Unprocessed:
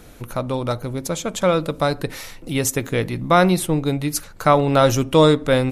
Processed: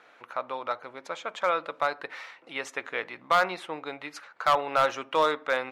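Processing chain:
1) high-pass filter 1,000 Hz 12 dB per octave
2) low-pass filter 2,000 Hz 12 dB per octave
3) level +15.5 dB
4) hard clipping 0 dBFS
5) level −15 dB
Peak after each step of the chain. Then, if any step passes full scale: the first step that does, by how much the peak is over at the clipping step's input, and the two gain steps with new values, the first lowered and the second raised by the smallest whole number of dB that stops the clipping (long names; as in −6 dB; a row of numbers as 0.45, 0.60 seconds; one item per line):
−5.0, −7.0, +8.5, 0.0, −15.0 dBFS
step 3, 8.5 dB
step 3 +6.5 dB, step 5 −6 dB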